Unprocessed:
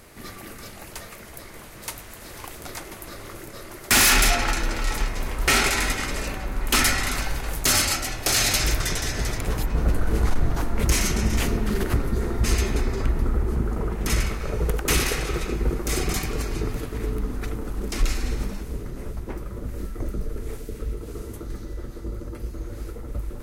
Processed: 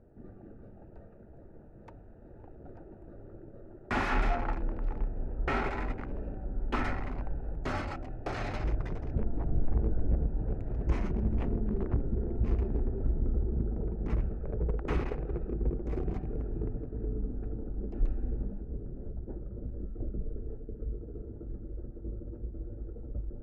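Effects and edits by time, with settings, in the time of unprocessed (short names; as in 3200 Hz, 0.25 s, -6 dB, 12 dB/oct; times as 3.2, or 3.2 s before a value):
9.14–10.87 reverse
whole clip: Wiener smoothing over 41 samples; LPF 1300 Hz 12 dB/oct; bell 880 Hz +2.5 dB; gain -6.5 dB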